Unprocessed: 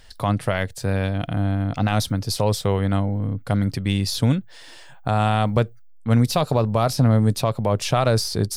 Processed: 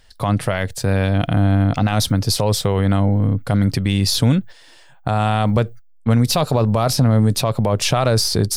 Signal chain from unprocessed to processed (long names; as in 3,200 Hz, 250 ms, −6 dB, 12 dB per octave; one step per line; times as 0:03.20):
noise gate −35 dBFS, range −11 dB
brickwall limiter −15 dBFS, peak gain reduction 6.5 dB
level +7.5 dB